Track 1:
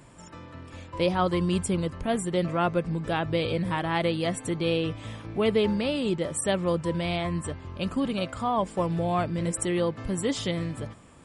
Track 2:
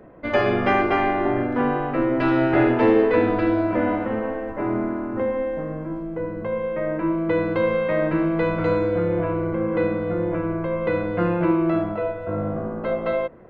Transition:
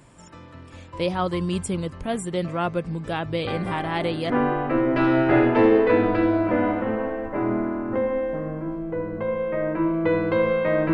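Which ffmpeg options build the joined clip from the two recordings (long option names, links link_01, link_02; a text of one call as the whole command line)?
ffmpeg -i cue0.wav -i cue1.wav -filter_complex "[1:a]asplit=2[link_01][link_02];[0:a]apad=whole_dur=10.93,atrim=end=10.93,atrim=end=4.302[link_03];[link_02]atrim=start=1.538:end=8.17[link_04];[link_01]atrim=start=0.71:end=1.54,asetpts=PTS-STARTPTS,volume=-12.5dB,afade=type=in:duration=0.004:curve=hsin,afade=type=out:start_time=0.826:duration=0.004:curve=hsin,adelay=3470[link_05];[link_03][link_04]acrossfade=duration=0.004:curve1=hsin:curve2=hsin[link_06];[link_06][link_05]amix=inputs=2:normalize=0" out.wav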